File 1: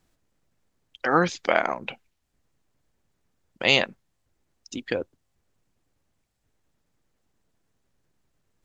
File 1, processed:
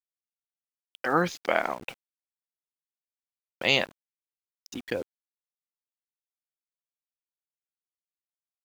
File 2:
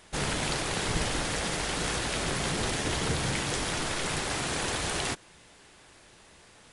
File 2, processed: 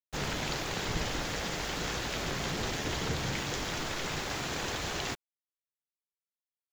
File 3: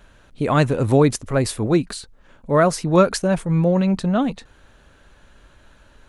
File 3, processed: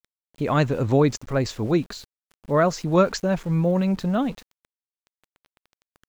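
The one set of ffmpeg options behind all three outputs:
ffmpeg -i in.wav -af "aresample=16000,aresample=44100,aeval=exprs='val(0)*gte(abs(val(0)),0.0106)':channel_layout=same,volume=-3.5dB" out.wav

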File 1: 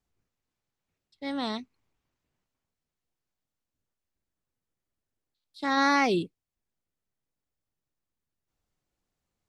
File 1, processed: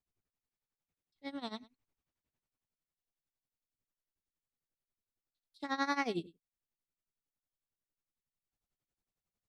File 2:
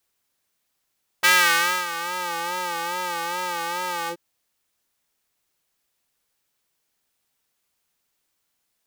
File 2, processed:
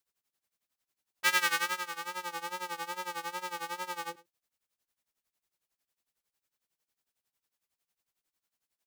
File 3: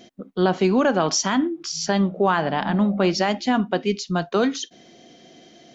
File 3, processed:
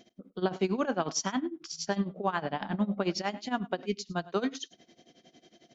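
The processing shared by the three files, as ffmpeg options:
ffmpeg -i in.wav -af "tremolo=f=11:d=0.87,aecho=1:1:102:0.0944,volume=-7dB" out.wav

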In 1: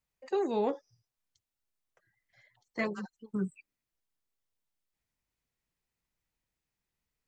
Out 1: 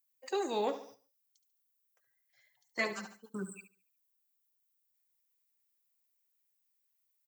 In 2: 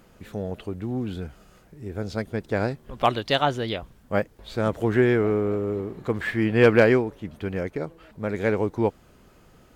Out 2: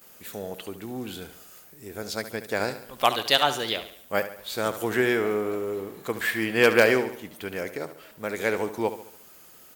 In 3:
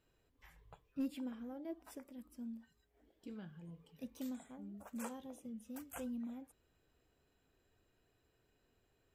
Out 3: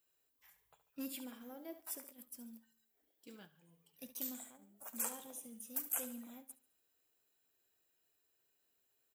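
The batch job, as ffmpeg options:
ffmpeg -i in.wav -af "aemphasis=mode=production:type=riaa,aecho=1:1:71|142|213|284|355:0.251|0.118|0.0555|0.0261|0.0123,agate=range=-9dB:threshold=-54dB:ratio=16:detection=peak" out.wav

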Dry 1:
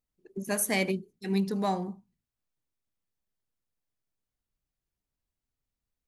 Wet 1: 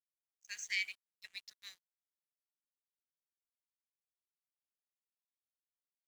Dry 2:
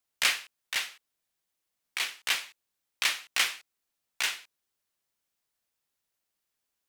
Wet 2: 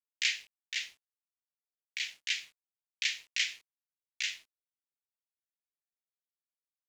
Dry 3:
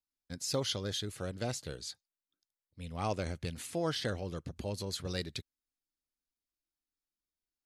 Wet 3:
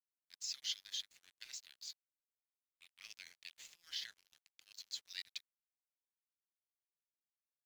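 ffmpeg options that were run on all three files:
ffmpeg -i in.wav -af "asuperpass=centerf=5000:order=12:qfactor=0.52,aresample=16000,aresample=44100,aeval=exprs='sgn(val(0))*max(abs(val(0))-0.00188,0)':channel_layout=same,volume=-3.5dB" out.wav

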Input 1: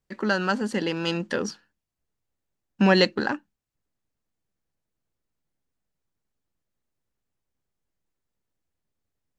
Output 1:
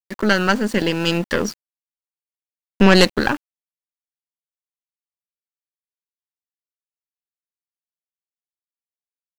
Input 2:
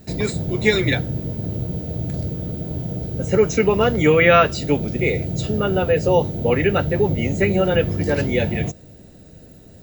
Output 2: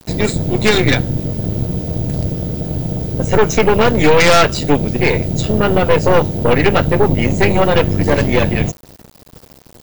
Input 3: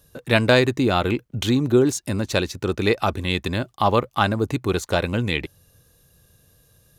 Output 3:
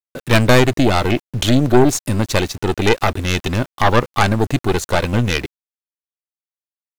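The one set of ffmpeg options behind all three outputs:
ffmpeg -i in.wav -af "aeval=exprs='0.891*(cos(1*acos(clip(val(0)/0.891,-1,1)))-cos(1*PI/2))+0.398*(cos(5*acos(clip(val(0)/0.891,-1,1)))-cos(5*PI/2))+0.316*(cos(8*acos(clip(val(0)/0.891,-1,1)))-cos(8*PI/2))':channel_layout=same,aeval=exprs='val(0)*gte(abs(val(0)),0.0355)':channel_layout=same,volume=-4dB" out.wav

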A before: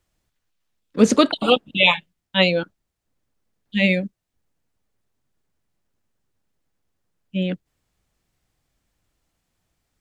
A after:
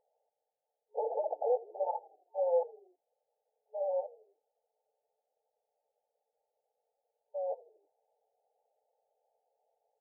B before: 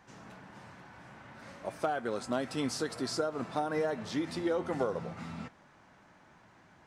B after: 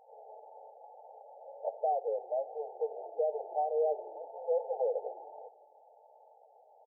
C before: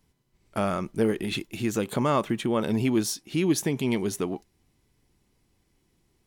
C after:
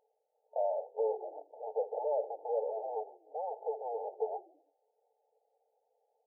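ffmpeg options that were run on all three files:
ffmpeg -i in.wav -filter_complex "[0:a]aeval=exprs='(tanh(35.5*val(0)+0.35)-tanh(0.35))/35.5':channel_layout=same,afftfilt=real='re*between(b*sr/4096,430,900)':imag='im*between(b*sr/4096,430,900)':win_size=4096:overlap=0.75,asplit=5[link_01][link_02][link_03][link_04][link_05];[link_02]adelay=81,afreqshift=-36,volume=-21dB[link_06];[link_03]adelay=162,afreqshift=-72,volume=-27.2dB[link_07];[link_04]adelay=243,afreqshift=-108,volume=-33.4dB[link_08];[link_05]adelay=324,afreqshift=-144,volume=-39.6dB[link_09];[link_01][link_06][link_07][link_08][link_09]amix=inputs=5:normalize=0,volume=7dB" out.wav

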